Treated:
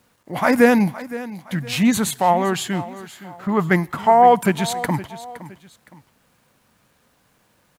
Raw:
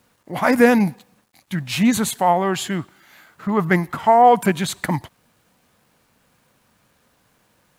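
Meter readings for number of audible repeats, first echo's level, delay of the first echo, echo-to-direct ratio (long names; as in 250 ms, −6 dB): 2, −16.0 dB, 515 ms, −15.5 dB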